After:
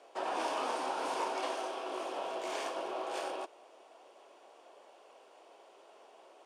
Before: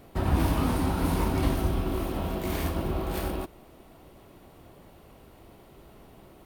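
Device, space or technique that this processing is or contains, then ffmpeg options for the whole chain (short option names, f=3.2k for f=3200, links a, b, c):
phone speaker on a table: -filter_complex "[0:a]asettb=1/sr,asplit=3[a][b][c];[a]atrim=end=1.334[d];[b]atrim=start=1.33:end=1.9,asetpts=PTS-STARTPTS,afade=t=in:d=0.004:c=qsin,afade=t=out:st=0.566:d=0.004:c=qsin,highpass=270[e];[c]atrim=start=1.896[f];[d][e]acrossfade=d=0.004:c1=hsin:c2=qsin[g];[g][f]acrossfade=d=0.004:c1=qsin:c2=hsin,highpass=f=480:w=0.5412,highpass=f=480:w=1.3066,equalizer=f=1.3k:t=q:w=4:g=-4,equalizer=f=2k:t=q:w=4:g=-7,equalizer=f=4k:t=q:w=4:g=-6,lowpass=f=7.7k:w=0.5412,lowpass=f=7.7k:w=1.3066"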